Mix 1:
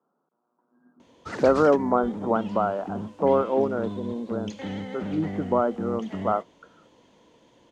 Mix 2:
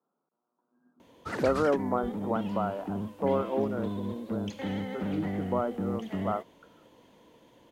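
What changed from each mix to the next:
speech -7.0 dB; master: remove resonant low-pass 6.7 kHz, resonance Q 1.5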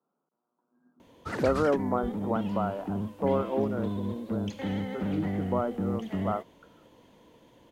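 master: add bass shelf 130 Hz +6 dB

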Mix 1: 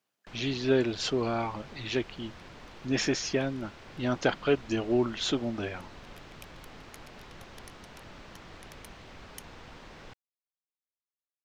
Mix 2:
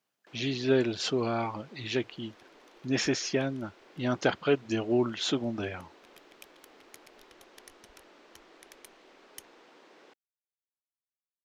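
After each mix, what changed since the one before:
first sound: add ladder high-pass 280 Hz, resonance 40%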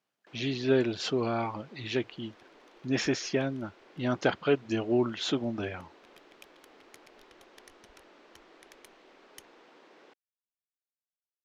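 master: add treble shelf 7.3 kHz -9 dB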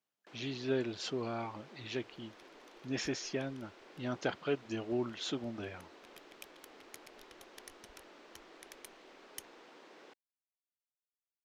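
speech -8.5 dB; master: add treble shelf 7.3 kHz +9 dB

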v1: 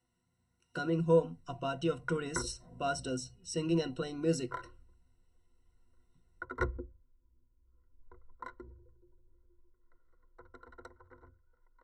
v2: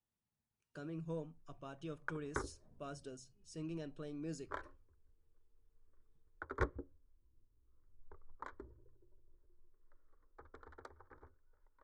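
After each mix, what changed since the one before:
speech -11.5 dB; master: remove rippled EQ curve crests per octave 2, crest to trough 17 dB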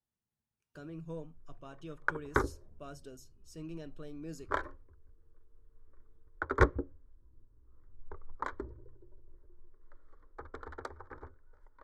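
speech: remove brick-wall FIR low-pass 11 kHz; background +11.5 dB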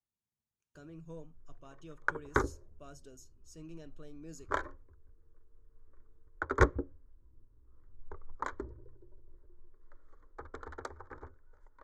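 speech -5.0 dB; master: add peaking EQ 6.7 kHz +8.5 dB 0.36 oct

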